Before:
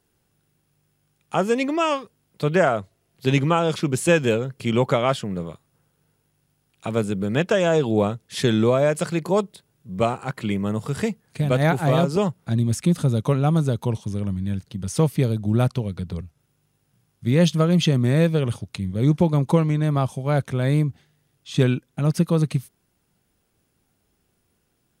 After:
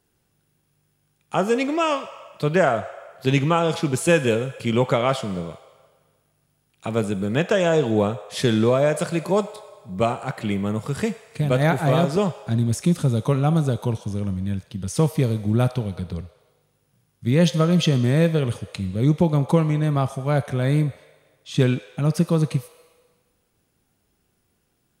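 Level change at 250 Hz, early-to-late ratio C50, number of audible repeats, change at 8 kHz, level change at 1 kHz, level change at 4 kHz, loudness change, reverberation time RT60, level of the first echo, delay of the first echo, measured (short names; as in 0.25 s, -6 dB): 0.0 dB, 12.5 dB, none, +0.5 dB, +0.5 dB, +0.5 dB, 0.0 dB, 1.5 s, none, none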